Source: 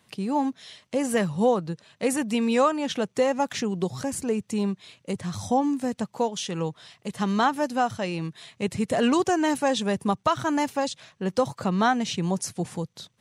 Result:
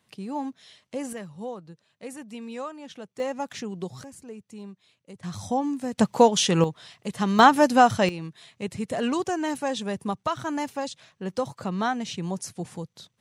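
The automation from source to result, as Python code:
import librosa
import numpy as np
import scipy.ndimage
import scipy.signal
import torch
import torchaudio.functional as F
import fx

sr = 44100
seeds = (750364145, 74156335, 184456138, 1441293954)

y = fx.gain(x, sr, db=fx.steps((0.0, -6.5), (1.13, -14.0), (3.2, -6.5), (4.04, -15.0), (5.23, -3.0), (5.98, 9.0), (6.64, 1.0), (7.39, 7.5), (8.09, -4.5)))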